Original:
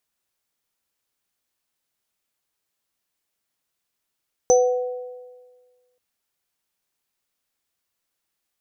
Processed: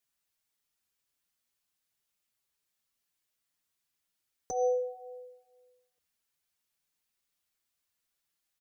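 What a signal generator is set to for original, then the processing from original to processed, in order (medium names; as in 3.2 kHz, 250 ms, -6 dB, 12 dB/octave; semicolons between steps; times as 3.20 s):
sine partials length 1.48 s, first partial 498 Hz, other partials 747/6060 Hz, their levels -9/-6.5 dB, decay 1.54 s, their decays 1.28/0.31 s, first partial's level -11 dB
peaking EQ 520 Hz -5 dB 2.5 oct; peak limiter -19 dBFS; endless flanger 5.7 ms +2.1 Hz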